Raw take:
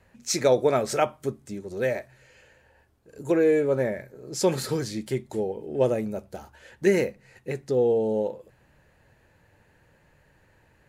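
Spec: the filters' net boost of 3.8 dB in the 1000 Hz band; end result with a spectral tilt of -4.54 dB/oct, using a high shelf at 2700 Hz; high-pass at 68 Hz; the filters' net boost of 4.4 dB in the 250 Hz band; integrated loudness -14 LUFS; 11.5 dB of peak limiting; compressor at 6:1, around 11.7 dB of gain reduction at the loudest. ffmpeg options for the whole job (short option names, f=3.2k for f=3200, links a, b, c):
-af "highpass=68,equalizer=f=250:t=o:g=6,equalizer=f=1k:t=o:g=4,highshelf=f=2.7k:g=6,acompressor=threshold=-26dB:ratio=6,volume=22dB,alimiter=limit=-4dB:level=0:latency=1"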